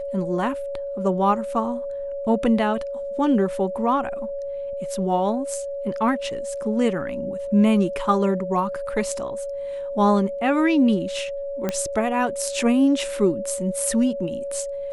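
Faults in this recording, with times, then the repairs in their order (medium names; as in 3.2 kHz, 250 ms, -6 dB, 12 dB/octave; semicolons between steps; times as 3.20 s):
whine 560 Hz -27 dBFS
11.69 s: pop -10 dBFS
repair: de-click; band-stop 560 Hz, Q 30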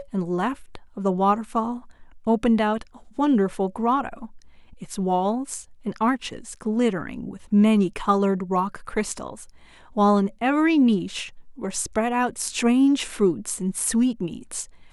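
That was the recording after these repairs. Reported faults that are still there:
nothing left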